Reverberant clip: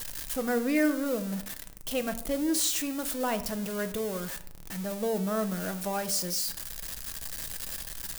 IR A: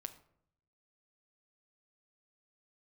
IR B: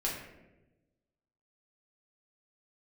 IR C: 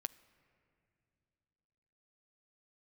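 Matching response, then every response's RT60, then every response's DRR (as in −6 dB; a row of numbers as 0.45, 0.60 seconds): A; 0.70, 1.0, 2.7 seconds; 8.0, −5.0, 15.0 decibels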